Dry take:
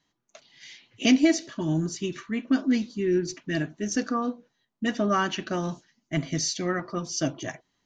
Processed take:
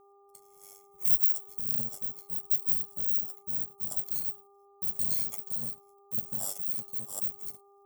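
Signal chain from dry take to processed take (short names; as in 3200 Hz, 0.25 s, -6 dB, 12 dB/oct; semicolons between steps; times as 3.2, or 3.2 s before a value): FFT order left unsorted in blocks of 128 samples; formant shift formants -4 st; band shelf 2200 Hz -13 dB 2.3 oct; ring modulator 49 Hz; buzz 400 Hz, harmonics 3, -58 dBFS -4 dB/oct; gain -2 dB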